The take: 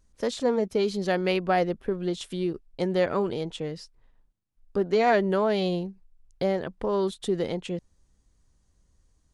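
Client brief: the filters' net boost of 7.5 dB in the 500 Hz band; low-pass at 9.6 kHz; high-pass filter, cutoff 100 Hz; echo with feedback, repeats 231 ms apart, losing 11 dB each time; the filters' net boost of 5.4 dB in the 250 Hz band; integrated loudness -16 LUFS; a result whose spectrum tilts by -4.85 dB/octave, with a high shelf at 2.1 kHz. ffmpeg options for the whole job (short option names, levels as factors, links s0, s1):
-af "highpass=100,lowpass=9600,equalizer=f=250:t=o:g=5.5,equalizer=f=500:t=o:g=8,highshelf=f=2100:g=-5,aecho=1:1:231|462|693:0.282|0.0789|0.0221,volume=1.68"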